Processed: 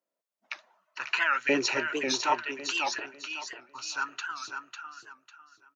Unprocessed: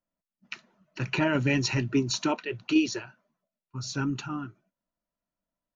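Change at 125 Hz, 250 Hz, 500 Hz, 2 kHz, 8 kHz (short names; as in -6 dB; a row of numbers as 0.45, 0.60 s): -23.5 dB, -10.0 dB, -1.5 dB, +4.5 dB, n/a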